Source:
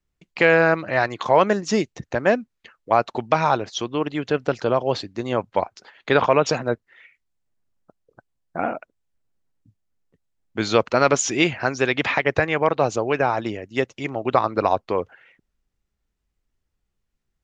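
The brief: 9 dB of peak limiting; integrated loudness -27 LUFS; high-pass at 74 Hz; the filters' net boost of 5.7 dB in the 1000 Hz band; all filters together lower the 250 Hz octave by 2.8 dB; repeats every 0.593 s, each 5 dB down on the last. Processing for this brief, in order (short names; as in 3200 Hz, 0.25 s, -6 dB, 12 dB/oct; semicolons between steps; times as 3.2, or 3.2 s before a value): HPF 74 Hz; bell 250 Hz -4.5 dB; bell 1000 Hz +7.5 dB; limiter -7 dBFS; feedback echo 0.593 s, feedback 56%, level -5 dB; gain -5.5 dB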